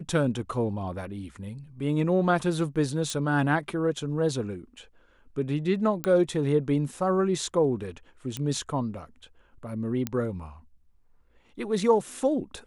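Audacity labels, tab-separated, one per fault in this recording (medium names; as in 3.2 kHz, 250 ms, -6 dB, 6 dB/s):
3.100000	3.100000	pop
6.040000	6.040000	pop -14 dBFS
8.370000	8.370000	pop -17 dBFS
10.070000	10.070000	pop -13 dBFS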